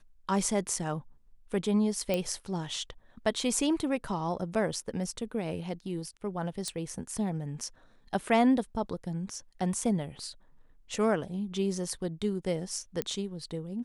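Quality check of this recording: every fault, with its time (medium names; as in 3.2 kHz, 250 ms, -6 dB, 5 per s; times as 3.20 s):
2.14 s: pop -16 dBFS
6.68 s: pop -20 dBFS
13.02 s: pop -15 dBFS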